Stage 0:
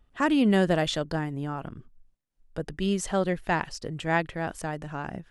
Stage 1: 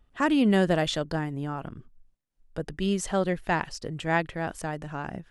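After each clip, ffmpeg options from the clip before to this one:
-af anull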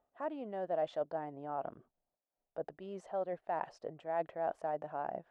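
-af "areverse,acompressor=threshold=-33dB:ratio=6,areverse,bandpass=f=670:t=q:w=3.2:csg=0,volume=6.5dB"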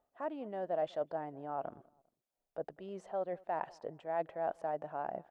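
-filter_complex "[0:a]asplit=2[a][b];[b]adelay=200,lowpass=f=1.4k:p=1,volume=-23.5dB,asplit=2[c][d];[d]adelay=200,lowpass=f=1.4k:p=1,volume=0.35[e];[a][c][e]amix=inputs=3:normalize=0"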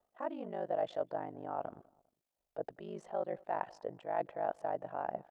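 -af "aeval=exprs='val(0)*sin(2*PI*25*n/s)':c=same,volume=3dB"

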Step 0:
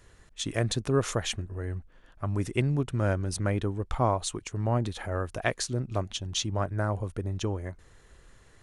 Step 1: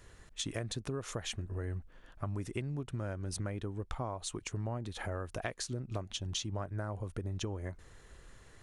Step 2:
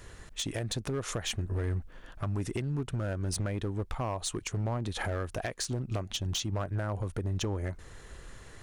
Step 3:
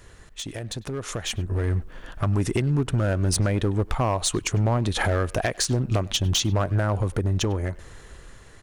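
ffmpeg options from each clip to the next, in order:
-af "acompressor=threshold=-34dB:ratio=10"
-filter_complex "[0:a]asplit=2[a][b];[b]alimiter=level_in=6dB:limit=-24dB:level=0:latency=1:release=333,volume=-6dB,volume=3dB[c];[a][c]amix=inputs=2:normalize=0,volume=26.5dB,asoftclip=hard,volume=-26.5dB"
-filter_complex "[0:a]asplit=2[a][b];[b]adelay=100,highpass=300,lowpass=3.4k,asoftclip=type=hard:threshold=-36dB,volume=-18dB[c];[a][c]amix=inputs=2:normalize=0,dynaudnorm=f=280:g=11:m=10dB"

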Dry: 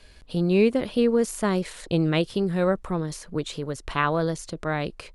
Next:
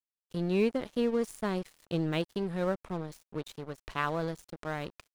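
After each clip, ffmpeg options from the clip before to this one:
-af "aeval=exprs='sgn(val(0))*max(abs(val(0))-0.015,0)':c=same,volume=-7dB"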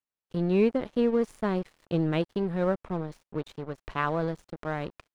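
-af "lowpass=f=1.9k:p=1,volume=4.5dB"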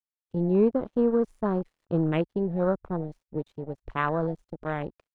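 -af "afwtdn=0.0158,volume=1.5dB"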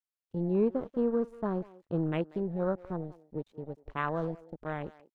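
-filter_complex "[0:a]asplit=2[a][b];[b]adelay=190,highpass=300,lowpass=3.4k,asoftclip=type=hard:threshold=-21.5dB,volume=-18dB[c];[a][c]amix=inputs=2:normalize=0,volume=-5.5dB"

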